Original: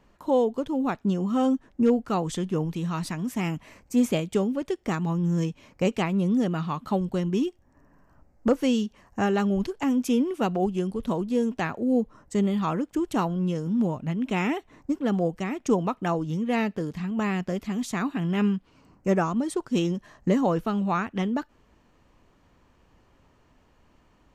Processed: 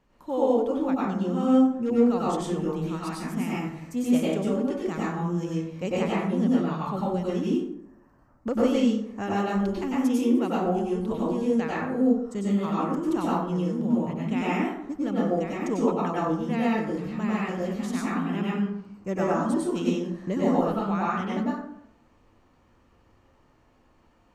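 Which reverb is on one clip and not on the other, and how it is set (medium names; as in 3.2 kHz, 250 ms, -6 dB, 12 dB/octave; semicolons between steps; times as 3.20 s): plate-style reverb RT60 0.75 s, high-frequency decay 0.5×, pre-delay 85 ms, DRR -6.5 dB; trim -7.5 dB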